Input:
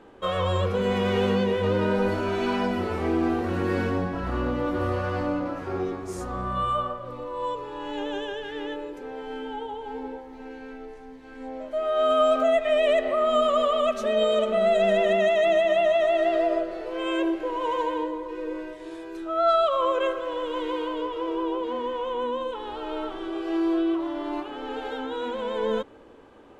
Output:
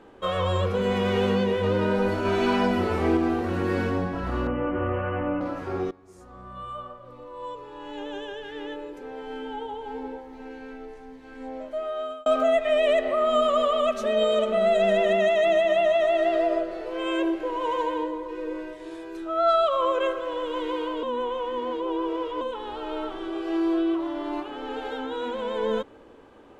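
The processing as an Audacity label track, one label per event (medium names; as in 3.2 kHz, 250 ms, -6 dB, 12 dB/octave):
2.250000	3.170000	gain +3 dB
4.470000	5.410000	Chebyshev low-pass 3.1 kHz, order 10
5.910000	9.690000	fade in, from -20.5 dB
11.590000	12.260000	fade out
21.030000	22.410000	reverse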